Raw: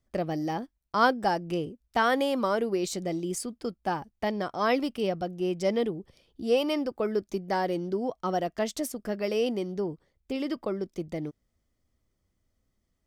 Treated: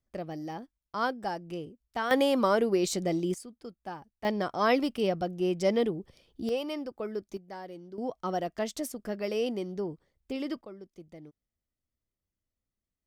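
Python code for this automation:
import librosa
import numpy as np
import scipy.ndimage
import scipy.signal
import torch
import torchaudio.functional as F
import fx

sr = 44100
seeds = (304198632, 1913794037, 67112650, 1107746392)

y = fx.gain(x, sr, db=fx.steps((0.0, -7.5), (2.11, 2.0), (3.34, -10.5), (4.25, 0.5), (6.49, -7.0), (7.37, -14.5), (7.98, -3.0), (10.61, -14.5)))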